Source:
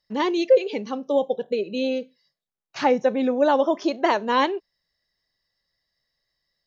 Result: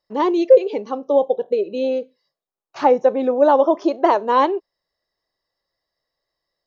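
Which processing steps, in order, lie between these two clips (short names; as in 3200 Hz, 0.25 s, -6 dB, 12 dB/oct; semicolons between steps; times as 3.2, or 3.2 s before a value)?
band shelf 620 Hz +10 dB 2.4 oct; gain -4.5 dB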